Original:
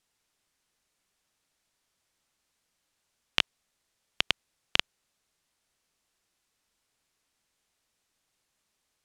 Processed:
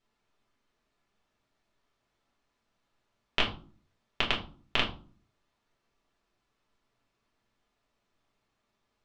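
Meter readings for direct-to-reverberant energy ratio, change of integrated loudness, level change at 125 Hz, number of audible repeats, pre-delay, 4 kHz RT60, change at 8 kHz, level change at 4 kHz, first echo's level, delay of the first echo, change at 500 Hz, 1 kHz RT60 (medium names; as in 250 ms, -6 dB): -2.5 dB, -1.0 dB, +6.0 dB, no echo, 5 ms, 0.25 s, -9.0 dB, -2.0 dB, no echo, no echo, +5.5 dB, 0.40 s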